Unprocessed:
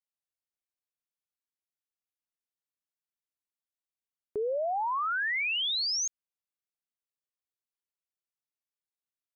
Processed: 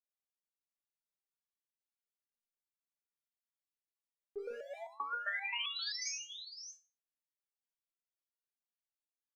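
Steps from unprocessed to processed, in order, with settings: 4.38–4.78 s: hard clipper -34.5 dBFS, distortion -12 dB; multi-tap echo 40/78/150/647 ms -12/-14/-4.5/-9 dB; resonator arpeggio 7.6 Hz 200–670 Hz; trim +3.5 dB

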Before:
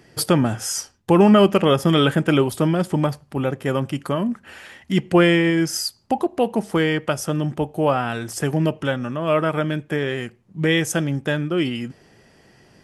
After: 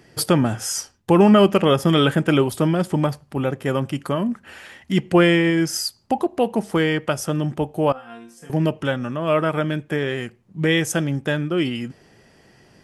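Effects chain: 7.92–8.50 s: chord resonator F3 sus4, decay 0.37 s

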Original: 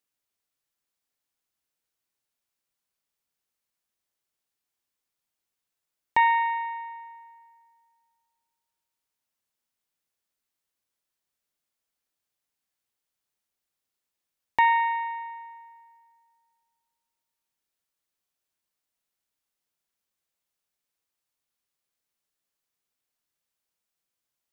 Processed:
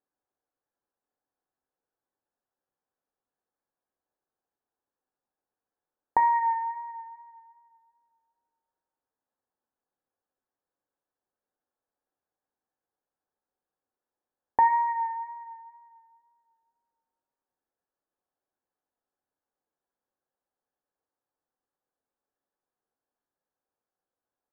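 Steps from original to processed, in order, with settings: wow and flutter 26 cents; Chebyshev low-pass 1.7 kHz, order 5; small resonant body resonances 370/530/750 Hz, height 9 dB, ringing for 20 ms; on a send: reverberation RT60 0.50 s, pre-delay 3 ms, DRR 6.5 dB; on the sum: trim -3 dB

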